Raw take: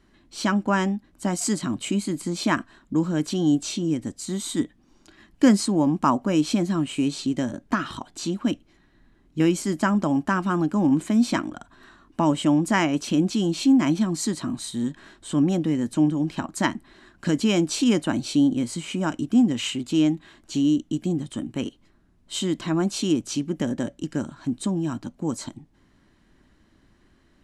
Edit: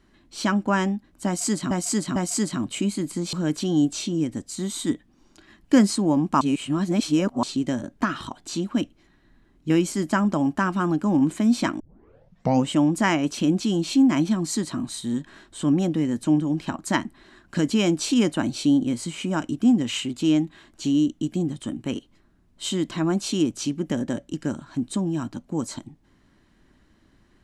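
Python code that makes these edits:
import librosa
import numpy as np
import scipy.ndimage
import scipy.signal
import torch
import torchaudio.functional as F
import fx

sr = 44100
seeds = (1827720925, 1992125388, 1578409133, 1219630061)

y = fx.edit(x, sr, fx.repeat(start_s=1.26, length_s=0.45, count=3),
    fx.cut(start_s=2.43, length_s=0.6),
    fx.reverse_span(start_s=6.11, length_s=1.02),
    fx.tape_start(start_s=11.5, length_s=0.9), tone=tone)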